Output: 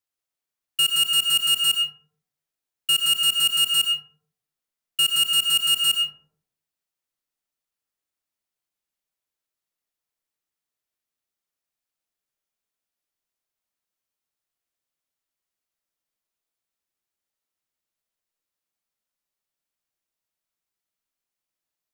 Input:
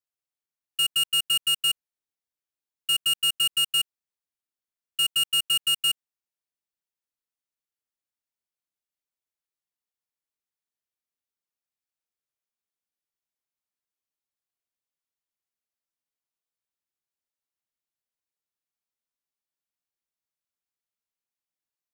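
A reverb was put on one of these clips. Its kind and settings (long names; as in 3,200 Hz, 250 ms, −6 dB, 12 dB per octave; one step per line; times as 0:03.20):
comb and all-pass reverb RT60 0.65 s, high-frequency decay 0.35×, pre-delay 65 ms, DRR 4.5 dB
level +3.5 dB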